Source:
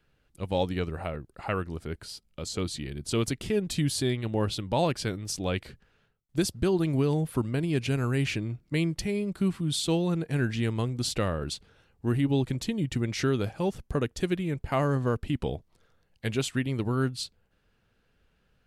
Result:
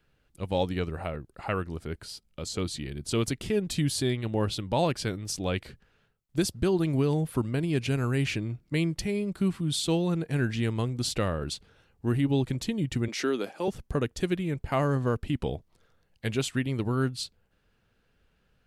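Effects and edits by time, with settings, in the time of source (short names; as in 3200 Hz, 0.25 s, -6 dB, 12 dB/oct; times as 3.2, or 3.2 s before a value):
13.08–13.68 HPF 240 Hz 24 dB/oct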